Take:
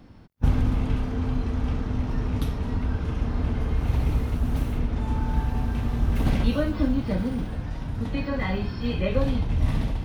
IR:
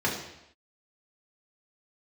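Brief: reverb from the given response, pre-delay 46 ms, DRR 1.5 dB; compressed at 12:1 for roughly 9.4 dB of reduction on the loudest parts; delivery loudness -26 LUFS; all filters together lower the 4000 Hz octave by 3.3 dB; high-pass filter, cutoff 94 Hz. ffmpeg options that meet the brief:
-filter_complex "[0:a]highpass=94,equalizer=f=4k:t=o:g=-4.5,acompressor=threshold=-29dB:ratio=12,asplit=2[a][b];[1:a]atrim=start_sample=2205,adelay=46[c];[b][c]afir=irnorm=-1:irlink=0,volume=-13dB[d];[a][d]amix=inputs=2:normalize=0,volume=4.5dB"

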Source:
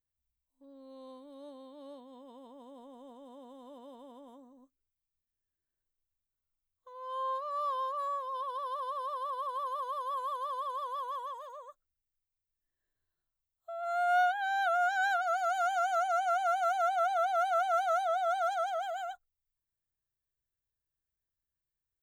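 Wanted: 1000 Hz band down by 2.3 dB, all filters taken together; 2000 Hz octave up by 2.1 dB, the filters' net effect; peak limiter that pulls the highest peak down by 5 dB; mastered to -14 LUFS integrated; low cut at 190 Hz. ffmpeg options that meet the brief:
-af "highpass=190,equalizer=f=1k:t=o:g=-6.5,equalizer=f=2k:t=o:g=8,volume=20.5dB,alimiter=limit=-5dB:level=0:latency=1"

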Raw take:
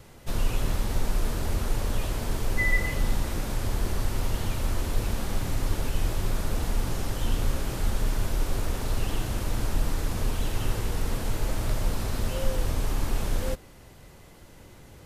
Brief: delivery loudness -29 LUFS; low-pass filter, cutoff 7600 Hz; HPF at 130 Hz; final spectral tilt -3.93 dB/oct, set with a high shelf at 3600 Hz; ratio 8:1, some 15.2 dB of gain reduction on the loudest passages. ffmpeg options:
-af "highpass=130,lowpass=7.6k,highshelf=f=3.6k:g=4.5,acompressor=threshold=-39dB:ratio=8,volume=13.5dB"

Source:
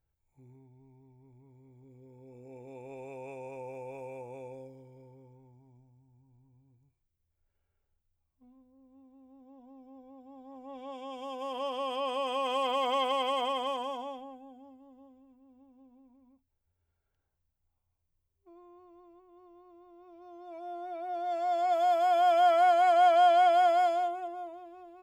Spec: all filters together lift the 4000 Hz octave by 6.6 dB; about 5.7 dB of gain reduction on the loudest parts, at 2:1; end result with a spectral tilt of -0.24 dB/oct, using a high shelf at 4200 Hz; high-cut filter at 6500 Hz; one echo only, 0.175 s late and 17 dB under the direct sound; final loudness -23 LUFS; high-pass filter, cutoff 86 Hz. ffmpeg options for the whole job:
-af "highpass=86,lowpass=6.5k,equalizer=f=4k:t=o:g=5,highshelf=f=4.2k:g=9,acompressor=threshold=-30dB:ratio=2,aecho=1:1:175:0.141,volume=9dB"

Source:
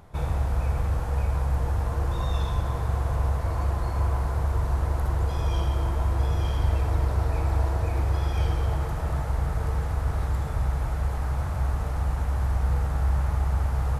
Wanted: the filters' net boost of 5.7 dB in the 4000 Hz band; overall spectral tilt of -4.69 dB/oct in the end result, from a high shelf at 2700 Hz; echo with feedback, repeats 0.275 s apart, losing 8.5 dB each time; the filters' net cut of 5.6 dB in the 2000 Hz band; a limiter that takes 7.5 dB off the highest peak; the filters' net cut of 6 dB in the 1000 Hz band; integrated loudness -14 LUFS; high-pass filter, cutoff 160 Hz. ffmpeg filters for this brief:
-af "highpass=160,equalizer=f=1k:t=o:g=-7,equalizer=f=2k:t=o:g=-9,highshelf=f=2.7k:g=8,equalizer=f=4k:t=o:g=4,alimiter=level_in=5dB:limit=-24dB:level=0:latency=1,volume=-5dB,aecho=1:1:275|550|825|1100:0.376|0.143|0.0543|0.0206,volume=24dB"

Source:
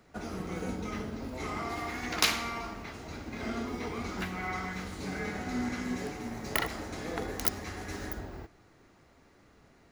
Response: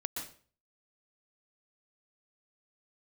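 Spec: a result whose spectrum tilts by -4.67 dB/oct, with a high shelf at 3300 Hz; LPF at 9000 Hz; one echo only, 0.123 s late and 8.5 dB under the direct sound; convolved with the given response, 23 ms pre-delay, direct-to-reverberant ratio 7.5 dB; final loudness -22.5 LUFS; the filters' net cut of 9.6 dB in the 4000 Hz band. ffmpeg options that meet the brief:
-filter_complex "[0:a]lowpass=9k,highshelf=f=3.3k:g=-8,equalizer=f=4k:t=o:g=-6.5,aecho=1:1:123:0.376,asplit=2[a][b];[1:a]atrim=start_sample=2205,adelay=23[c];[b][c]afir=irnorm=-1:irlink=0,volume=-9dB[d];[a][d]amix=inputs=2:normalize=0,volume=13.5dB"

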